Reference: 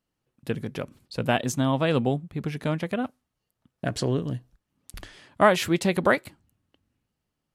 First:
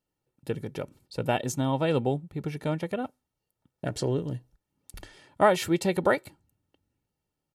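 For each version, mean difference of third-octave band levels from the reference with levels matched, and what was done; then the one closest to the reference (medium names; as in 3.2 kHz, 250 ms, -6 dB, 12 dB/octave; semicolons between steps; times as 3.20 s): 1.0 dB: treble shelf 4.6 kHz +5 dB; comb 2.2 ms, depth 68%; small resonant body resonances 220/660 Hz, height 11 dB, ringing for 20 ms; trim -8 dB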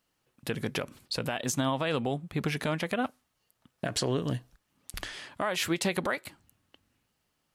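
6.0 dB: bass shelf 480 Hz -9.5 dB; compression 4:1, threshold -33 dBFS, peak gain reduction 15.5 dB; peak limiter -27 dBFS, peak gain reduction 8.5 dB; trim +8.5 dB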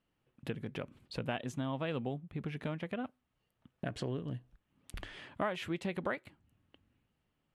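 4.0 dB: low-pass 11 kHz; resonant high shelf 3.9 kHz -7 dB, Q 1.5; compression 2.5:1, threshold -42 dBFS, peak gain reduction 19.5 dB; trim +1 dB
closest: first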